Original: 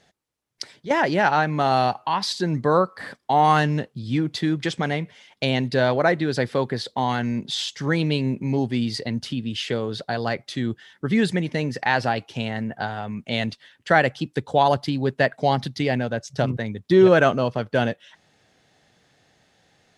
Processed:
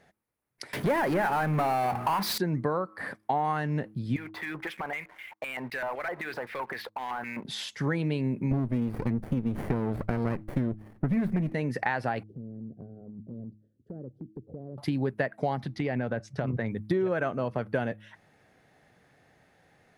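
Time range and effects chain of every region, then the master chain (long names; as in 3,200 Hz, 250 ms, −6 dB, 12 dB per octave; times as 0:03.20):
0:00.73–0:02.38: mains-hum notches 60/120/180/240/300/360/420 Hz + power curve on the samples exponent 0.5
0:04.16–0:07.45: auto-filter band-pass square 3.9 Hz 990–2,300 Hz + downward compressor 4 to 1, threshold −39 dBFS + leveller curve on the samples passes 3
0:08.51–0:11.54: low-shelf EQ 430 Hz +9 dB + windowed peak hold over 33 samples
0:12.23–0:14.78: inverse Chebyshev low-pass filter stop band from 860 Hz + downward compressor 4 to 1, threshold −39 dBFS
0:15.63–0:16.71: downward compressor, threshold −23 dBFS + high-frequency loss of the air 61 metres
whole clip: flat-topped bell 4,800 Hz −10 dB; hum removal 106.5 Hz, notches 3; downward compressor 12 to 1, threshold −24 dBFS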